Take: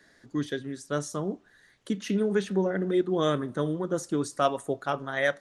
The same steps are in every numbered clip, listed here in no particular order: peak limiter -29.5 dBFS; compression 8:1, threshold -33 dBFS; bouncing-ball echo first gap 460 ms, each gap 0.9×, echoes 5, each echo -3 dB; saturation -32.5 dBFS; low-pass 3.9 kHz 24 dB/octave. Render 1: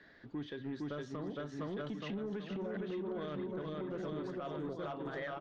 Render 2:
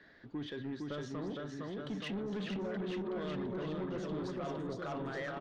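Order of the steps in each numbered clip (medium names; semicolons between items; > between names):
bouncing-ball echo > compression > peak limiter > saturation > low-pass; low-pass > peak limiter > bouncing-ball echo > saturation > compression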